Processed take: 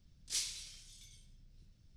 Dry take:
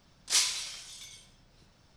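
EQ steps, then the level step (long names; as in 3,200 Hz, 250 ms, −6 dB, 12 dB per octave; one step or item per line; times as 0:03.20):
guitar amp tone stack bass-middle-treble 10-0-1
+10.0 dB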